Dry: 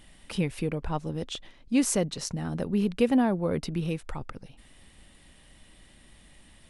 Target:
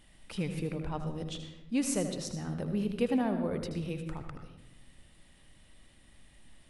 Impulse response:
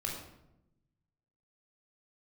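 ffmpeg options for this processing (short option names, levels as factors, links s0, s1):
-filter_complex "[0:a]asplit=2[s0][s1];[1:a]atrim=start_sample=2205,adelay=78[s2];[s1][s2]afir=irnorm=-1:irlink=0,volume=0.376[s3];[s0][s3]amix=inputs=2:normalize=0,volume=0.473"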